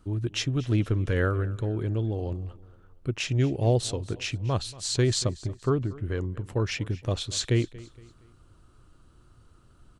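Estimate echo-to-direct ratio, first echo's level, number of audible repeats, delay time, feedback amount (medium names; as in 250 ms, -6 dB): -19.5 dB, -20.0 dB, 2, 233 ms, 39%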